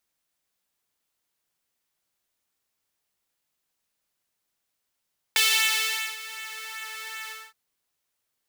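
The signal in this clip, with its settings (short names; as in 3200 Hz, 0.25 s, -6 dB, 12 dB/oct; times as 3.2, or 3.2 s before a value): synth patch with pulse-width modulation A4, noise -11.5 dB, filter highpass, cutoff 1400 Hz, Q 1.5, filter envelope 1 oct, filter decay 1.47 s, attack 1.4 ms, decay 0.80 s, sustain -19 dB, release 0.25 s, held 1.92 s, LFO 2.6 Hz, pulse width 28%, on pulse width 20%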